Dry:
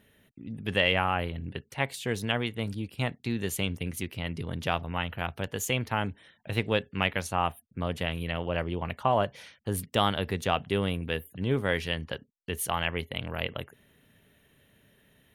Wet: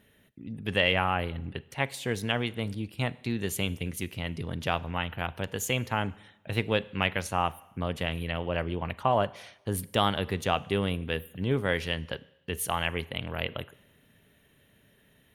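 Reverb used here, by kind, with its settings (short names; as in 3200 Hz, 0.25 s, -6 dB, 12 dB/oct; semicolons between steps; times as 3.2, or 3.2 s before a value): Schroeder reverb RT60 0.91 s, combs from 33 ms, DRR 20 dB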